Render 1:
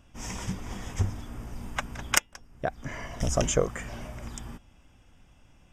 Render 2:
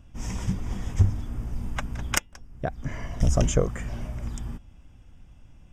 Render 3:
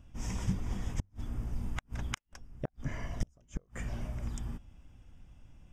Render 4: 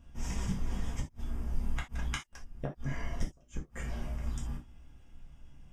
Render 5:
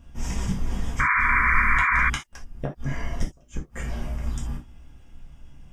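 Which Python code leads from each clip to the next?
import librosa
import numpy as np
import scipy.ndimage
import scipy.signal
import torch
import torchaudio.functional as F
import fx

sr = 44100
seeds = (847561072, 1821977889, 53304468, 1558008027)

y1 = fx.low_shelf(x, sr, hz=250.0, db=11.5)
y1 = F.gain(torch.from_numpy(y1), -2.5).numpy()
y2 = fx.gate_flip(y1, sr, shuts_db=-14.0, range_db=-39)
y2 = F.gain(torch.from_numpy(y2), -4.5).numpy()
y3 = fx.rev_gated(y2, sr, seeds[0], gate_ms=100, shape='falling', drr_db=-2.5)
y3 = F.gain(torch.from_numpy(y3), -3.0).numpy()
y4 = fx.spec_paint(y3, sr, seeds[1], shape='noise', start_s=0.99, length_s=1.11, low_hz=960.0, high_hz=2400.0, level_db=-28.0)
y4 = F.gain(torch.from_numpy(y4), 7.0).numpy()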